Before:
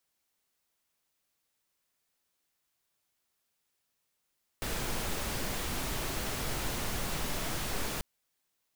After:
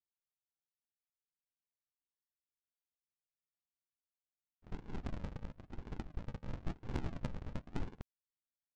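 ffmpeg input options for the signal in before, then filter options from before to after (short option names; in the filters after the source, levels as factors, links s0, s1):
-f lavfi -i "anoisesrc=c=pink:a=0.102:d=3.39:r=44100:seed=1"
-af "aresample=16000,acrusher=samples=36:mix=1:aa=0.000001:lfo=1:lforange=21.6:lforate=0.98,aresample=44100,agate=range=0.0224:threshold=0.0251:ratio=16:detection=peak,adynamicsmooth=sensitivity=3.5:basefreq=3000"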